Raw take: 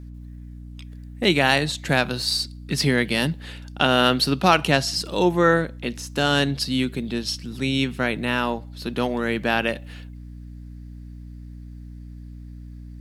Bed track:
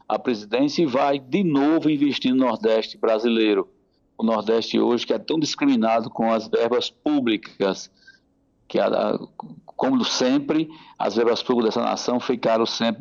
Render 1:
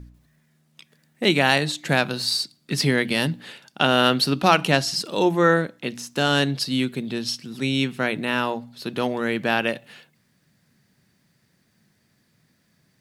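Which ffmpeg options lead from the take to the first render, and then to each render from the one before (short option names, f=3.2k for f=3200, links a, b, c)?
-af "bandreject=f=60:t=h:w=4,bandreject=f=120:t=h:w=4,bandreject=f=180:t=h:w=4,bandreject=f=240:t=h:w=4,bandreject=f=300:t=h:w=4"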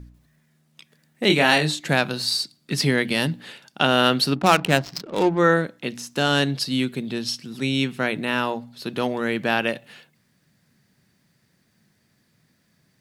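-filter_complex "[0:a]asettb=1/sr,asplit=3[a][b][c];[a]atrim=end=1.274[d];[b]atrim=start=1.27:end=1.8,asetpts=PTS-STARTPTS,afade=t=in:d=0.004:c=qsin,afade=t=out:st=0.526:d=0.004:c=qsin,asplit=2[e][f];[f]adelay=26,volume=-4dB[g];[e][g]amix=inputs=2:normalize=0,atrim=end_sample=23373[h];[c]atrim=start=1.796[i];[d][h]acrossfade=d=0.004:c1=hsin:c2=qsin[j];[j][i]acrossfade=d=0.004:c1=qsin:c2=hsin,asplit=3[k][l][m];[k]afade=t=out:st=4.34:d=0.02[n];[l]adynamicsmooth=sensitivity=2.5:basefreq=530,afade=t=in:st=4.34:d=0.02,afade=t=out:st=5.37:d=0.02[o];[m]afade=t=in:st=5.37:d=0.02[p];[n][o][p]amix=inputs=3:normalize=0"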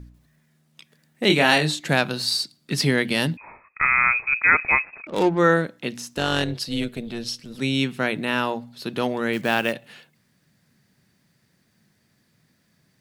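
-filter_complex "[0:a]asettb=1/sr,asplit=3[a][b][c];[a]atrim=end=3.374[d];[b]atrim=start=3.37:end=5.07,asetpts=PTS-STARTPTS,afade=t=in:d=0.004:c=qsin,afade=t=out:st=1.696:d=0.004:c=qsin,lowpass=f=2.3k:t=q:w=0.5098,lowpass=f=2.3k:t=q:w=0.6013,lowpass=f=2.3k:t=q:w=0.9,lowpass=f=2.3k:t=q:w=2.563,afreqshift=-2700[e];[c]atrim=start=5.066[f];[d][e]acrossfade=d=0.004:c1=hsin:c2=qsin[g];[g][f]acrossfade=d=0.004:c1=qsin:c2=hsin,asettb=1/sr,asplit=3[h][i][j];[h]atrim=end=6.154[k];[i]atrim=start=6.15:end=7.59,asetpts=PTS-STARTPTS,afade=t=in:d=0.004:c=qsin,afade=t=out:st=1.436:d=0.004:c=qsin,tremolo=f=240:d=0.667[l];[j]atrim=start=7.586[m];[k][l]acrossfade=d=0.004:c1=hsin:c2=qsin[n];[n][m]acrossfade=d=0.004:c1=qsin:c2=hsin,asettb=1/sr,asplit=3[o][p][q];[o]atrim=end=9.334[r];[p]atrim=start=9.33:end=9.73,asetpts=PTS-STARTPTS,afade=t=in:d=0.004:c=qsin,afade=t=out:st=0.396:d=0.004:c=qsin,acrusher=bits=5:mode=log:mix=0:aa=0.000001[s];[q]atrim=start=9.726[t];[r][s]acrossfade=d=0.004:c1=hsin:c2=qsin[u];[u][t]acrossfade=d=0.004:c1=qsin:c2=hsin"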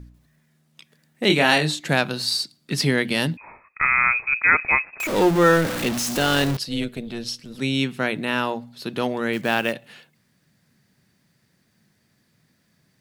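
-filter_complex "[0:a]asettb=1/sr,asplit=3[a][b][c];[a]atrim=end=5.004[d];[b]atrim=start=5:end=6.57,asetpts=PTS-STARTPTS,afade=t=in:d=0.004:c=qsin,afade=t=out:st=1.566:d=0.004:c=qsin,aeval=exprs='val(0)+0.5*0.0841*sgn(val(0))':c=same[e];[c]atrim=start=6.566[f];[d][e]acrossfade=d=0.004:c1=hsin:c2=qsin[g];[g][f]acrossfade=d=0.004:c1=qsin:c2=hsin"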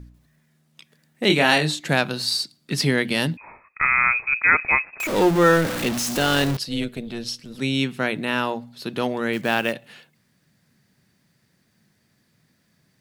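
-af anull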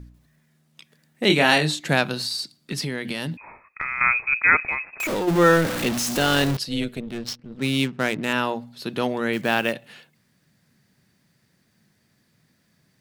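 -filter_complex "[0:a]asettb=1/sr,asplit=3[a][b][c];[a]atrim=end=2.144[d];[b]atrim=start=2.14:end=4.01,asetpts=PTS-STARTPTS,afade=t=in:d=0.004:c=qsin,afade=t=out:st=1.866:d=0.004:c=qsin,acompressor=threshold=-24dB:ratio=6:attack=3.2:release=140:knee=1:detection=peak[e];[c]atrim=start=4.006[f];[d][e]acrossfade=d=0.004:c1=hsin:c2=qsin[g];[g][f]acrossfade=d=0.004:c1=qsin:c2=hsin,asplit=3[h][i][j];[h]afade=t=out:st=4.66:d=0.02[k];[i]acompressor=threshold=-21dB:ratio=10:attack=3.2:release=140:knee=1:detection=peak,afade=t=in:st=4.66:d=0.02,afade=t=out:st=5.27:d=0.02[l];[j]afade=t=in:st=5.27:d=0.02[m];[k][l][m]amix=inputs=3:normalize=0,asettb=1/sr,asplit=3[n][o][p];[n]atrim=end=7.004[q];[o]atrim=start=7:end=8.33,asetpts=PTS-STARTPTS,afade=t=in:d=0.004:c=qsin,afade=t=out:st=1.326:d=0.004:c=qsin,adynamicsmooth=sensitivity=7.5:basefreq=620[r];[p]atrim=start=8.326[s];[q][r]acrossfade=d=0.004:c1=hsin:c2=qsin[t];[t][s]acrossfade=d=0.004:c1=qsin:c2=hsin"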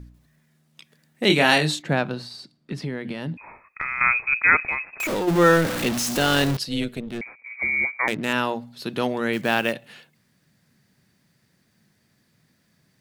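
-filter_complex "[0:a]asplit=3[a][b][c];[a]afade=t=out:st=1.81:d=0.02[d];[b]lowpass=f=1.2k:p=1,afade=t=in:st=1.81:d=0.02,afade=t=out:st=3.36:d=0.02[e];[c]afade=t=in:st=3.36:d=0.02[f];[d][e][f]amix=inputs=3:normalize=0,asettb=1/sr,asplit=3[g][h][i];[g]atrim=end=7.214[j];[h]atrim=start=7.21:end=8.08,asetpts=PTS-STARTPTS,afade=t=in:d=0.004:c=qsin,afade=t=out:st=0.866:d=0.004:c=qsin,lowpass=f=2.1k:t=q:w=0.5098,lowpass=f=2.1k:t=q:w=0.6013,lowpass=f=2.1k:t=q:w=0.9,lowpass=f=2.1k:t=q:w=2.563,afreqshift=-2500[k];[i]atrim=start=8.076[l];[j][k]acrossfade=d=0.004:c1=hsin:c2=qsin[m];[m][l]acrossfade=d=0.004:c1=qsin:c2=hsin"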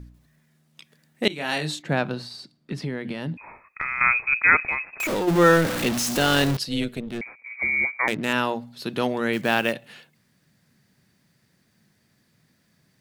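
-filter_complex "[0:a]asplit=2[a][b];[a]atrim=end=1.28,asetpts=PTS-STARTPTS,afade=t=out:st=1.276:d=0.004:c=hsin:silence=0.0749894[c];[b]atrim=start=1.28,asetpts=PTS-STARTPTS,afade=t=in:d=0.79:silence=0.0749894[d];[c][d]concat=n=2:v=0:a=1"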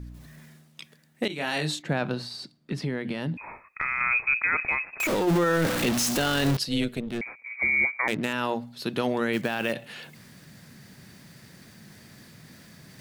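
-af "alimiter=limit=-15dB:level=0:latency=1:release=19,areverse,acompressor=mode=upward:threshold=-35dB:ratio=2.5,areverse"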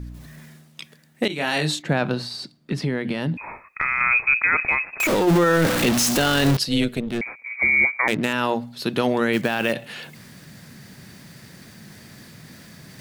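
-af "volume=5.5dB"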